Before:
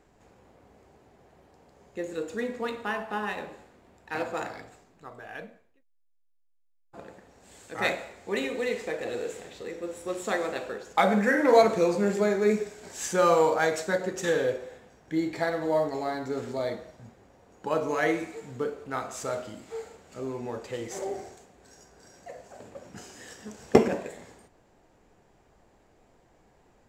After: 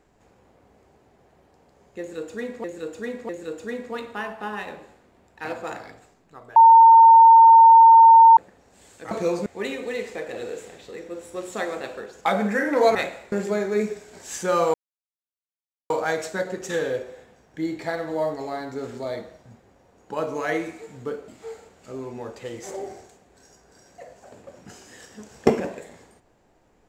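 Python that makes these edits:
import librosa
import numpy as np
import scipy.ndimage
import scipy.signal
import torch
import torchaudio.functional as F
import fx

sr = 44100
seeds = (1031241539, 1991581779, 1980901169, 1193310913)

y = fx.edit(x, sr, fx.repeat(start_s=1.99, length_s=0.65, count=3),
    fx.bleep(start_s=5.26, length_s=1.81, hz=909.0, db=-7.0),
    fx.swap(start_s=7.81, length_s=0.37, other_s=11.67, other_length_s=0.35),
    fx.insert_silence(at_s=13.44, length_s=1.16),
    fx.cut(start_s=18.82, length_s=0.74), tone=tone)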